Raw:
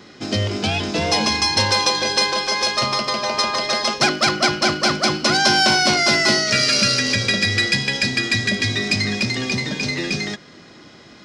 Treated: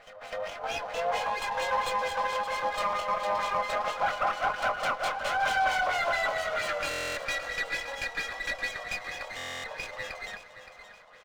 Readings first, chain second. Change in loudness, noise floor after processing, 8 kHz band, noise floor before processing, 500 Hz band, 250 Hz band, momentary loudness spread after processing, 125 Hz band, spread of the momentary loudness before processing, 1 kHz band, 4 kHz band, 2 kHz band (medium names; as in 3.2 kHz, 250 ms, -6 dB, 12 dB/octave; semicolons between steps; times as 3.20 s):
-12.5 dB, -51 dBFS, -19.5 dB, -45 dBFS, -8.5 dB, -26.5 dB, 10 LU, -26.0 dB, 8 LU, -5.5 dB, -20.0 dB, -10.5 dB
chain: dynamic bell 2.3 kHz, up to -3 dB, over -32 dBFS; chorus 1.5 Hz, delay 19.5 ms, depth 4.2 ms; pre-echo 253 ms -14.5 dB; LFO low-pass sine 4.4 Hz 980–3500 Hz; brick-wall FIR high-pass 450 Hz; in parallel at -8 dB: wavefolder -17.5 dBFS; on the sum: treble shelf 3 kHz -12 dB; feedback delay 570 ms, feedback 39%, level -12 dB; buffer glitch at 6.89/9.36 s, samples 1024, times 11; sliding maximum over 5 samples; trim -7.5 dB